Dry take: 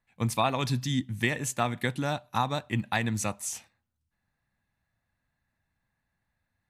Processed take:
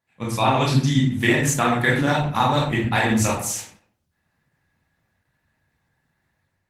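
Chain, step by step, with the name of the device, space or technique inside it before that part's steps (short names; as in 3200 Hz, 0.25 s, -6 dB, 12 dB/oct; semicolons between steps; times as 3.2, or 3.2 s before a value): 1.4–2.13 dynamic EQ 1700 Hz, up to +5 dB, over -47 dBFS, Q 2.8; far-field microphone of a smart speaker (reverb RT60 0.55 s, pre-delay 19 ms, DRR -4 dB; HPF 92 Hz 12 dB/oct; AGC gain up to 6 dB; Opus 16 kbps 48000 Hz)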